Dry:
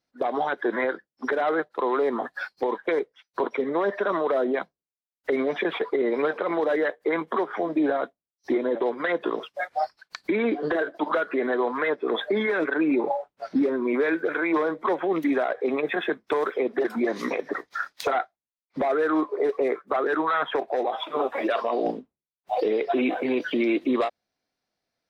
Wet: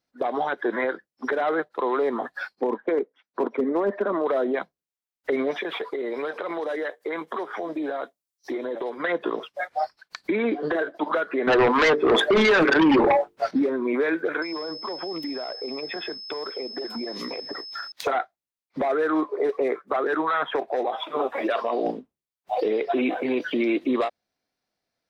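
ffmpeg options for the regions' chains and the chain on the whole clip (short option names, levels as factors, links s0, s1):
-filter_complex "[0:a]asettb=1/sr,asplit=3[s0][s1][s2];[s0]atrim=end=2.554[s3];[s1]atrim=start=2.55:end=4.26,asetpts=PTS-STARTPTS,afade=t=in:d=0.004:c=qsin,afade=t=out:st=1.706:d=0.004:c=qsin,lowpass=f=1100:p=1,lowshelf=f=160:t=q:w=3:g=-11,asoftclip=type=hard:threshold=0.158[s4];[s2]atrim=start=4.256[s5];[s3][s4]acrossfade=d=0.004:c1=hsin:c2=qsin[s6];[s6][s5]acrossfade=d=0.004:c1=qsin:c2=hsin,asettb=1/sr,asplit=3[s7][s8][s9];[s7]atrim=end=5.514[s10];[s8]atrim=start=5.51:end=8.98,asetpts=PTS-STARTPTS,afade=t=in:d=0.004:c=qsin,afade=t=out:st=3.466:d=0.004:c=qsin,bass=f=250:g=-7,treble=f=4000:g=8,acompressor=threshold=0.0447:ratio=2.5:attack=3.2:release=140:knee=1:detection=peak[s11];[s9]atrim=start=8.976[s12];[s10][s11]acrossfade=d=0.004:c1=hsin:c2=qsin[s13];[s13][s12]acrossfade=d=0.004:c1=qsin:c2=hsin,asettb=1/sr,asplit=3[s14][s15][s16];[s14]atrim=end=11.474[s17];[s15]atrim=start=11.47:end=13.51,asetpts=PTS-STARTPTS,afade=t=in:d=0.004:c=qsin,afade=t=out:st=2.036:d=0.004:c=qsin,bandreject=f=50:t=h:w=6,bandreject=f=100:t=h:w=6,bandreject=f=150:t=h:w=6,bandreject=f=200:t=h:w=6,bandreject=f=250:t=h:w=6,bandreject=f=300:t=h:w=6,bandreject=f=350:t=h:w=6,bandreject=f=400:t=h:w=6,bandreject=f=450:t=h:w=6,aeval=exprs='0.2*sin(PI/2*2.24*val(0)/0.2)':c=same[s18];[s16]atrim=start=13.506[s19];[s17][s18]acrossfade=d=0.004:c1=hsin:c2=qsin[s20];[s20][s19]acrossfade=d=0.004:c1=qsin:c2=hsin,asettb=1/sr,asplit=3[s21][s22][s23];[s21]atrim=end=14.424[s24];[s22]atrim=start=14.42:end=17.92,asetpts=PTS-STARTPTS,afade=t=in:d=0.004:c=qsin,afade=t=out:st=3.496:d=0.004:c=qsin,equalizer=f=1600:t=o:w=0.9:g=-5,acompressor=threshold=0.0355:ratio=6:attack=3.2:release=140:knee=1:detection=peak,aeval=exprs='val(0)+0.0158*sin(2*PI*5200*n/s)':c=same[s25];[s23]atrim=start=17.916[s26];[s24][s25]acrossfade=d=0.004:c1=hsin:c2=qsin[s27];[s27][s26]acrossfade=d=0.004:c1=qsin:c2=hsin"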